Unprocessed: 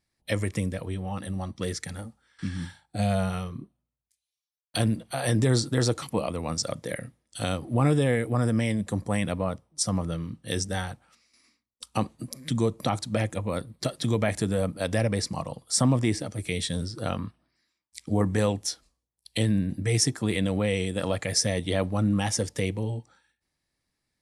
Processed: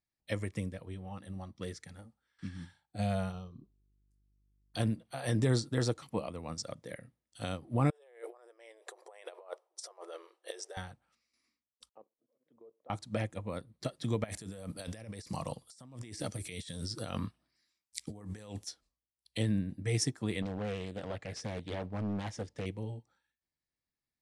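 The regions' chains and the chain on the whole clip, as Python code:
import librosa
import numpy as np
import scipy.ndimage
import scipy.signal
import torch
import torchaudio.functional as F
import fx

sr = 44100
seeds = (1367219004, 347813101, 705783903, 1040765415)

y = fx.dmg_buzz(x, sr, base_hz=50.0, harmonics=8, level_db=-58.0, tilt_db=-8, odd_only=False, at=(3.31, 4.76), fade=0.02)
y = fx.env_phaser(y, sr, low_hz=450.0, high_hz=2000.0, full_db=-36.0, at=(3.31, 4.76), fade=0.02)
y = fx.chain(y, sr, fx.peak_eq(hz=730.0, db=6.5, octaves=1.3),
    fx.over_compress(threshold_db=-30.0, ratio=-0.5),
    fx.brickwall_highpass(low_hz=340.0), at=(7.9, 10.77))
y = fx.chain(y, sr, fx.ladder_bandpass(hz=560.0, resonance_pct=50),
    fx.level_steps(step_db=13), at=(11.89, 12.9))
y = fx.chain(y, sr, fx.high_shelf(hz=3400.0, db=11.5),
    fx.over_compress(threshold_db=-32.0, ratio=-1.0), at=(14.24, 18.67))
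y = fx.chain(y, sr, fx.clip_hard(threshold_db=-23.0),
    fx.air_absorb(metres=64.0),
    fx.doppler_dist(depth_ms=0.42), at=(20.42, 22.66))
y = fx.high_shelf(y, sr, hz=9200.0, db=-7.5)
y = fx.upward_expand(y, sr, threshold_db=-38.0, expansion=1.5)
y = y * 10.0 ** (-5.0 / 20.0)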